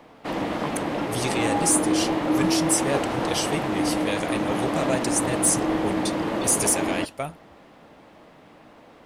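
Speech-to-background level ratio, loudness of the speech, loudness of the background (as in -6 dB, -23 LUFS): -0.5 dB, -26.0 LUFS, -25.5 LUFS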